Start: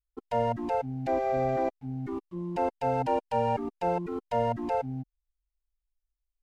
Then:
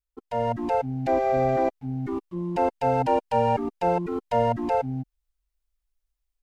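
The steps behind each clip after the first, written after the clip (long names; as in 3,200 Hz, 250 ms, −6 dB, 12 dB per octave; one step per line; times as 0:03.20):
automatic gain control gain up to 6.5 dB
level −1.5 dB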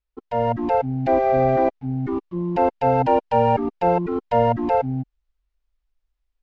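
high-frequency loss of the air 160 metres
level +5 dB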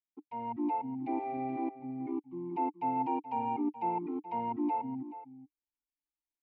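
formant filter u
slap from a distant wall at 73 metres, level −13 dB
level −2.5 dB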